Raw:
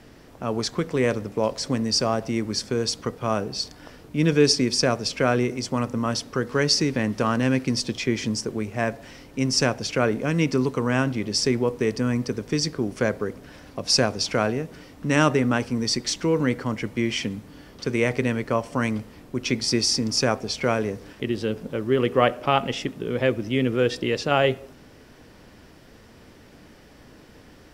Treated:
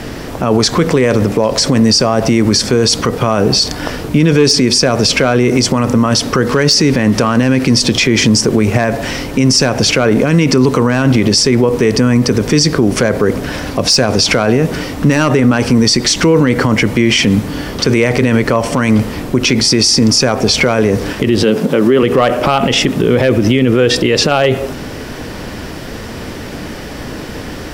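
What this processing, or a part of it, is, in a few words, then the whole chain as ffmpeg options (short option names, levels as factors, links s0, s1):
loud club master: -filter_complex "[0:a]asettb=1/sr,asplit=3[s0][s1][s2];[s0]atrim=end=21.434[s3];[s1]atrim=start=21.43:end=22.03,asetpts=PTS-STARTPTS,afade=t=in:d=0.004:c=qsin,afade=t=out:st=0.596:d=0.004:c=qsin,highpass=f=150:w=0.5412,highpass=f=150:w=1.3066[s4];[s2]atrim=start=22.026[s5];[s3][s4]acrossfade=d=0.004:c1=hsin:c2=qsin[s6];[s6][s5]acrossfade=d=0.004:c1=qsin:c2=hsin,acompressor=threshold=0.0501:ratio=1.5,asoftclip=type=hard:threshold=0.188,alimiter=level_in=17.8:limit=0.891:release=50:level=0:latency=1,volume=0.891"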